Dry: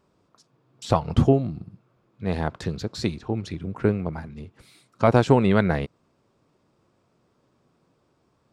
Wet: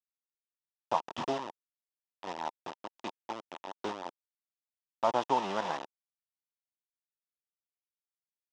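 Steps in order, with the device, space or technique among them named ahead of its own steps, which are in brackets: hand-held game console (bit-crush 4-bit; speaker cabinet 450–5200 Hz, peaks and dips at 450 Hz -7 dB, 920 Hz +9 dB, 1500 Hz -7 dB, 2200 Hz -9 dB, 4300 Hz -9 dB); gain -8.5 dB

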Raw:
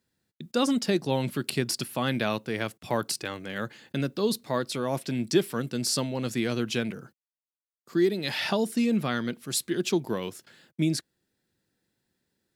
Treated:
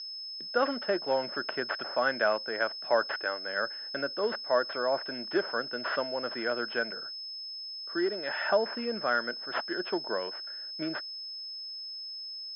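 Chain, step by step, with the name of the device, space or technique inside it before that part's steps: toy sound module (decimation joined by straight lines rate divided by 4×; pulse-width modulation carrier 5200 Hz; speaker cabinet 510–4400 Hz, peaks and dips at 600 Hz +8 dB, 1500 Hz +10 dB, 2400 Hz -6 dB, 3900 Hz -9 dB)

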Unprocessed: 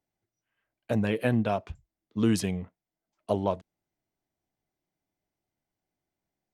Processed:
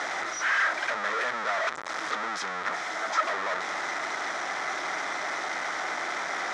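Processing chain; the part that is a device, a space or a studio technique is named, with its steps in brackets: 1.6–2.28 low shelf 100 Hz +6 dB; home computer beeper (infinite clipping; speaker cabinet 740–5400 Hz, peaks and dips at 1300 Hz +9 dB, 1900 Hz +7 dB, 2800 Hz -10 dB, 4500 Hz -8 dB); gain +6.5 dB

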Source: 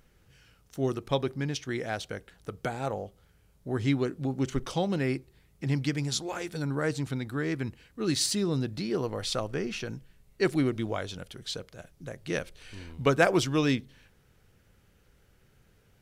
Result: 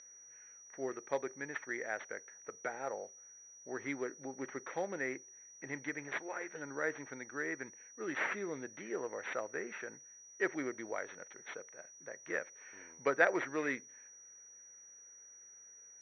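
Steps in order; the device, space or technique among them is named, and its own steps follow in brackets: toy sound module (decimation joined by straight lines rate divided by 6×; pulse-width modulation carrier 5800 Hz; speaker cabinet 560–3500 Hz, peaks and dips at 740 Hz -5 dB, 1100 Hz -6 dB, 1900 Hz +8 dB, 2900 Hz -10 dB); gain -2 dB

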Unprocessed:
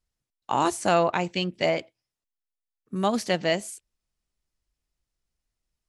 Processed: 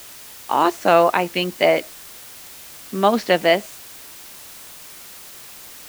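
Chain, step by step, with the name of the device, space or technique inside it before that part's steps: dictaphone (BPF 260–3500 Hz; AGC; wow and flutter; white noise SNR 18 dB)

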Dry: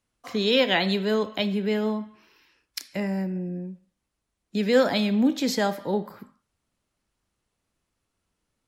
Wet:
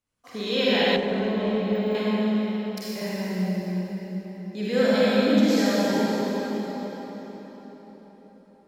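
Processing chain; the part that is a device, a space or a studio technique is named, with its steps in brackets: cathedral (reverb RT60 4.8 s, pre-delay 40 ms, DRR -10 dB); 0.96–1.95 de-esser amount 100%; gain -8.5 dB

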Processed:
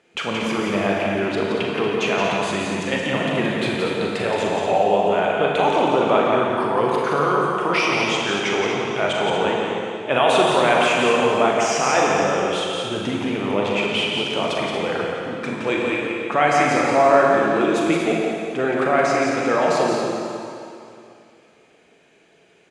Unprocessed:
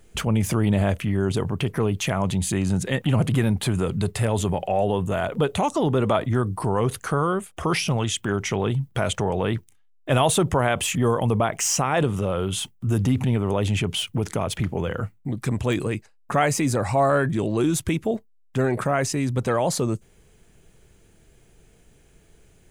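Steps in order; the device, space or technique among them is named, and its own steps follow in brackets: station announcement (BPF 330–4100 Hz; bell 2400 Hz +5.5 dB 0.21 oct; loudspeakers at several distances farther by 14 m -10 dB, 59 m -5 dB, 80 m -9 dB; reverb RT60 2.6 s, pre-delay 29 ms, DRR -0.5 dB); gain +2 dB

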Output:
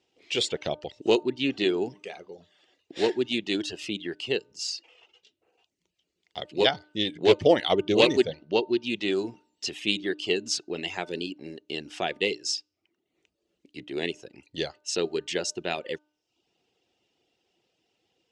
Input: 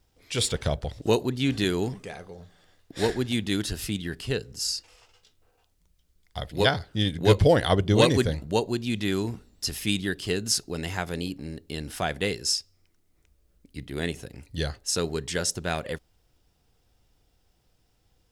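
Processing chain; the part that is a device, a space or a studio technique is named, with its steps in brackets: full-range speaker at full volume (Doppler distortion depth 0.22 ms; speaker cabinet 260–6700 Hz, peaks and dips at 360 Hz +7 dB, 1100 Hz -5 dB, 1500 Hz -6 dB, 2800 Hz +8 dB, 5200 Hz -3 dB); reverb removal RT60 0.58 s; 8.28–8.83 Chebyshev low-pass 5900 Hz, order 5; de-hum 301.4 Hz, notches 5; 1.23–1.9 high shelf 6400 Hz -9 dB

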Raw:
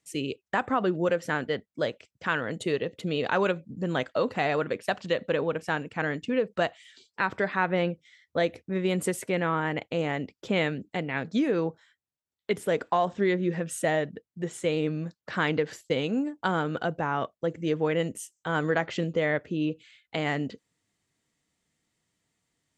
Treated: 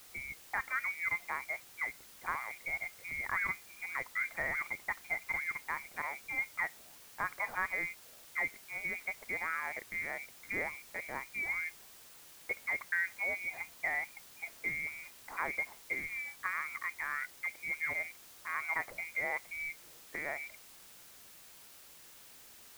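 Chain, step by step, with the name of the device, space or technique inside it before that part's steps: scrambled radio voice (BPF 340–3100 Hz; inverted band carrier 2600 Hz; white noise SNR 16 dB); gain -8.5 dB

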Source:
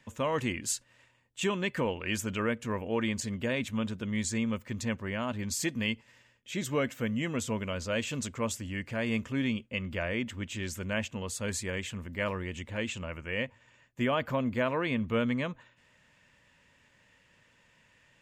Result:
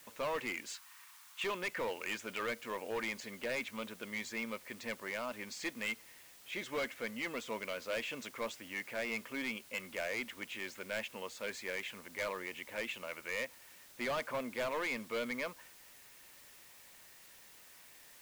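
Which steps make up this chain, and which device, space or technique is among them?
drive-through speaker (BPF 430–3600 Hz; bell 2200 Hz +5 dB 0.26 oct; hard clip -30 dBFS, distortion -9 dB; white noise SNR 17 dB); 0.74–1.44 resonant low shelf 750 Hz -12 dB, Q 3; gain -2 dB

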